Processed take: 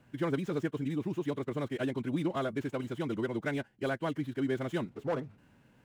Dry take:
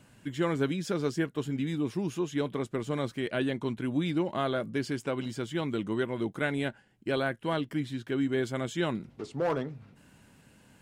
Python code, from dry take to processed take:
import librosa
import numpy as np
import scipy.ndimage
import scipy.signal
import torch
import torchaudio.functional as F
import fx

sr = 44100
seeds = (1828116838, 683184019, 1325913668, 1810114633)

y = scipy.ndimage.median_filter(x, 9, mode='constant')
y = fx.stretch_vocoder(y, sr, factor=0.54)
y = y * librosa.db_to_amplitude(-2.0)